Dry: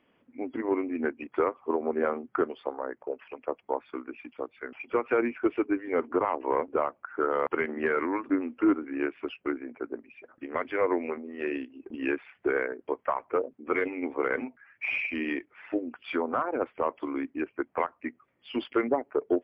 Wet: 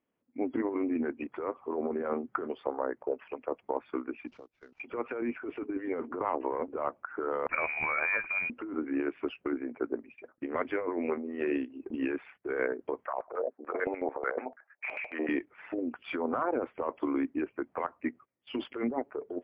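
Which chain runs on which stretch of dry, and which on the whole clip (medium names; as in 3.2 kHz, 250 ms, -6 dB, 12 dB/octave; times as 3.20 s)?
4.27–4.80 s: CVSD coder 32 kbps + bass shelf 240 Hz +7 dB + compression, threshold -49 dBFS
7.49–8.50 s: companding laws mixed up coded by mu + upward compressor, threshold -40 dBFS + frequency inversion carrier 2.7 kHz
13.06–15.29 s: peaking EQ 570 Hz +14.5 dB 2.5 oct + LFO band-pass square 6.8 Hz 690–1600 Hz
whole clip: gate -51 dBFS, range -18 dB; treble shelf 2.1 kHz -9 dB; compressor with a negative ratio -31 dBFS, ratio -1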